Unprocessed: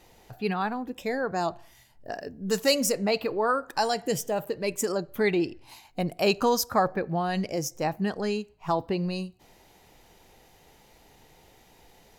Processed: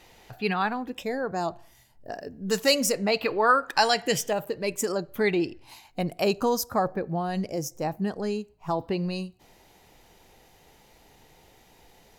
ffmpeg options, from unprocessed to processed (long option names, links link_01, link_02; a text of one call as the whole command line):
ffmpeg -i in.wav -af "asetnsamples=nb_out_samples=441:pad=0,asendcmd='1.03 equalizer g -3.5;2.32 equalizer g 3;3.23 equalizer g 10.5;4.33 equalizer g 1;6.24 equalizer g -6;8.81 equalizer g 0.5',equalizer=frequency=2500:width_type=o:width=2.4:gain=6" out.wav